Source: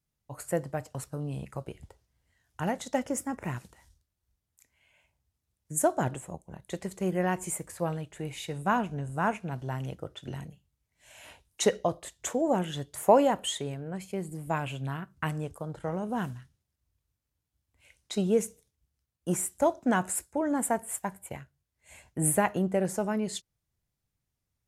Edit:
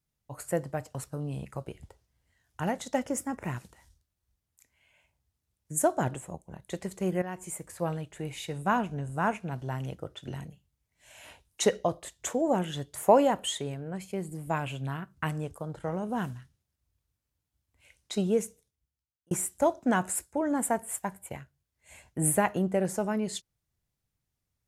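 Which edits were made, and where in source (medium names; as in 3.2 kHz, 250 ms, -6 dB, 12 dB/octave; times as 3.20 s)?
7.22–7.88 s: fade in, from -12 dB
18.19–19.31 s: fade out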